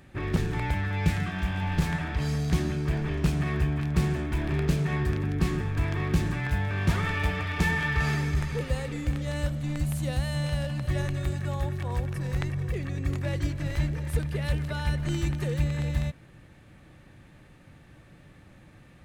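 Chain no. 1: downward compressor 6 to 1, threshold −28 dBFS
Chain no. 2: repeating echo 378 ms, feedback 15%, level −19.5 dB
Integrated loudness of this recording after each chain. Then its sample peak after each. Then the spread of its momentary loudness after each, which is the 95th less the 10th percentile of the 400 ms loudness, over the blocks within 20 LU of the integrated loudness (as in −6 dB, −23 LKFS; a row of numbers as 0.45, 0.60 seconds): −33.0, −28.5 LKFS; −17.5, −10.5 dBFS; 2, 4 LU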